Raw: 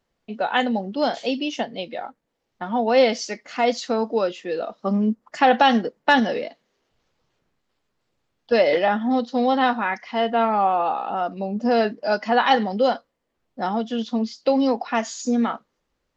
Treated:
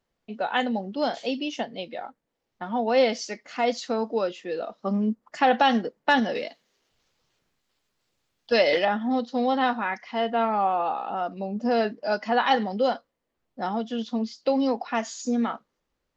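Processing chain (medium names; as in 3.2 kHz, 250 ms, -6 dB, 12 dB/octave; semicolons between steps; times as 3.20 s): 6.35–8.85 s: treble shelf 2.2 kHz +10 dB; trim -4 dB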